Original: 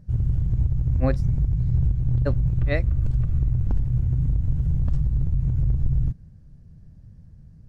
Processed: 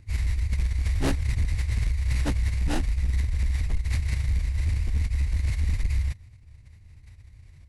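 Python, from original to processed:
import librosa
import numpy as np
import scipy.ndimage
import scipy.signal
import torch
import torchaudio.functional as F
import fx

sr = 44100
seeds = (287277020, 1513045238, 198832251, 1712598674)

y = fx.sample_hold(x, sr, seeds[0], rate_hz=2200.0, jitter_pct=20)
y = fx.pitch_keep_formants(y, sr, semitones=-11.5)
y = np.clip(y, -10.0 ** (-18.5 / 20.0), 10.0 ** (-18.5 / 20.0))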